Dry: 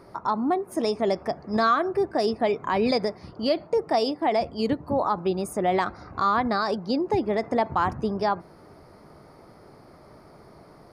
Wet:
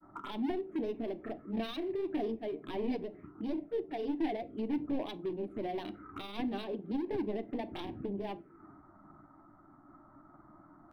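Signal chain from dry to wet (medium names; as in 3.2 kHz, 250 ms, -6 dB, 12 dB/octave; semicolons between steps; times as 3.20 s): local Wiener filter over 9 samples; low-pass 2.7 kHz 12 dB/octave; peaking EQ 88 Hz -5.5 dB 2.1 oct; band-stop 500 Hz, Q 12; in parallel at -1 dB: compression, threshold -34 dBFS, peak gain reduction 15.5 dB; on the sum: small resonant body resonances 300/1300 Hz, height 14 dB, ringing for 40 ms; overload inside the chain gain 17.5 dB; touch-sensitive phaser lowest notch 370 Hz, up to 1.3 kHz, full sweep at -20.5 dBFS; granulator, spray 18 ms, pitch spread up and down by 0 st; on a send at -12.5 dB: reverberation RT60 0.30 s, pre-delay 6 ms; on the sum: random flutter of the level, depth 50%; trim -9 dB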